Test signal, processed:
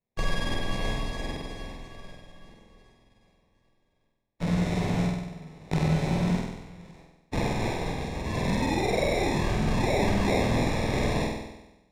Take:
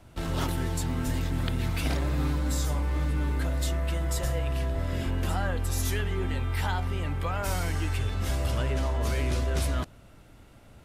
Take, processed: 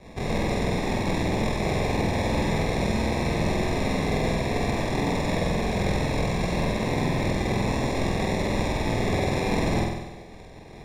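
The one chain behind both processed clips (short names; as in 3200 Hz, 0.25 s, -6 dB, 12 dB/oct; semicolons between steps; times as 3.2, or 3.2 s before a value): spectral whitening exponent 0.1; HPF 420 Hz 24 dB/oct; bell 4100 Hz +8 dB 1.2 oct; compressor 5:1, threshold -27 dBFS; chorus 0.58 Hz, delay 16 ms, depth 6 ms; sample-and-hold 27×; air absorption 61 m; flutter echo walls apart 8.2 m, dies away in 0.99 s; frequency shift -240 Hz; gain +6 dB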